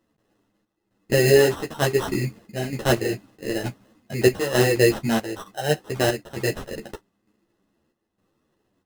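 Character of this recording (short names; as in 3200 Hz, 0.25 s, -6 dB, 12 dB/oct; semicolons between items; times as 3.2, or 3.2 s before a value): chopped level 1.1 Hz, depth 60%, duty 70%; aliases and images of a low sample rate 2300 Hz, jitter 0%; a shimmering, thickened sound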